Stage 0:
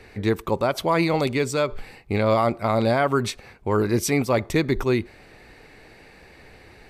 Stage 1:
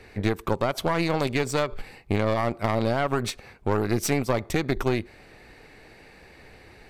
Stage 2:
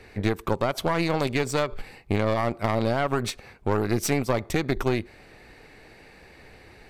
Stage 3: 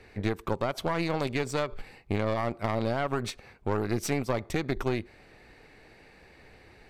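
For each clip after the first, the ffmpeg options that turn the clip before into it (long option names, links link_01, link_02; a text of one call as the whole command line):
ffmpeg -i in.wav -af "acompressor=threshold=-22dB:ratio=5,aeval=exprs='0.188*(cos(1*acos(clip(val(0)/0.188,-1,1)))-cos(1*PI/2))+0.075*(cos(2*acos(clip(val(0)/0.188,-1,1)))-cos(2*PI/2))+0.00596*(cos(5*acos(clip(val(0)/0.188,-1,1)))-cos(5*PI/2))+0.00841*(cos(7*acos(clip(val(0)/0.188,-1,1)))-cos(7*PI/2))':channel_layout=same" out.wav
ffmpeg -i in.wav -af anull out.wav
ffmpeg -i in.wav -af "highshelf=frequency=9200:gain=-5.5,volume=-4.5dB" out.wav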